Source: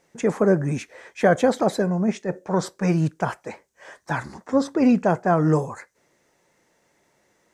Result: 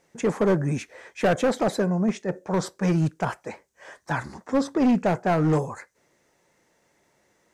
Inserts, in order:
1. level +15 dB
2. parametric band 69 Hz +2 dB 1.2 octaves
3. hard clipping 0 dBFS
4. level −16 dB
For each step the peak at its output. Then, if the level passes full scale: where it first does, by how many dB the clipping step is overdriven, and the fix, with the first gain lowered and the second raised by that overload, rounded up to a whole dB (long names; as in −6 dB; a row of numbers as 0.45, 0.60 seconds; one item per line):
+9.5, +9.5, 0.0, −16.0 dBFS
step 1, 9.5 dB
step 1 +5 dB, step 4 −6 dB